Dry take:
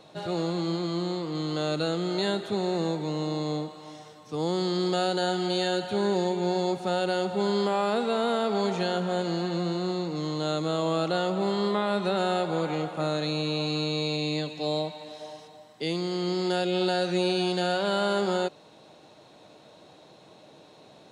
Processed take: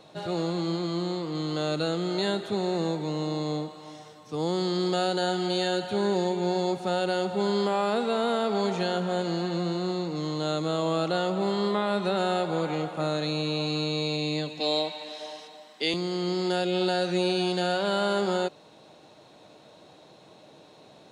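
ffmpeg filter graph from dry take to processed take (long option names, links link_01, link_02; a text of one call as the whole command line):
ffmpeg -i in.wav -filter_complex "[0:a]asettb=1/sr,asplit=3[link_01][link_02][link_03];[link_01]atrim=end=14.604[link_04];[link_02]atrim=start=14.6:end=15.94,asetpts=PTS-STARTPTS,afade=type=in:duration=0.004:curve=qsin,afade=type=out:start_time=1.336:duration=0.004:curve=qsin,highpass=frequency=200:width=0.5412,highpass=frequency=200:width=1.3066,equalizer=frequency=3000:width=0.51:gain=7.5[link_05];[link_03]atrim=start=15.936[link_06];[link_04][link_05]acrossfade=duration=0.004:curve1=hsin:curve2=qsin[link_07];[link_07][link_06]acrossfade=duration=0.004:curve1=qsin:curve2=hsin" out.wav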